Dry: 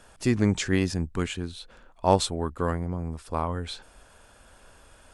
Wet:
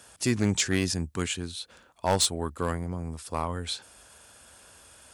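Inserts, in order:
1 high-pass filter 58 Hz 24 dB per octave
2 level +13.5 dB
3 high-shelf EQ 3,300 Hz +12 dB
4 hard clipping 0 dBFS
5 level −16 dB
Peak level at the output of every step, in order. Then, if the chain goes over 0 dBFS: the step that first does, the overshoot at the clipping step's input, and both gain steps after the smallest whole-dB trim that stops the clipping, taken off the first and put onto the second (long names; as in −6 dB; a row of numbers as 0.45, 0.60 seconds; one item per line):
−4.5, +9.0, +9.5, 0.0, −16.0 dBFS
step 2, 9.5 dB
step 2 +3.5 dB, step 5 −6 dB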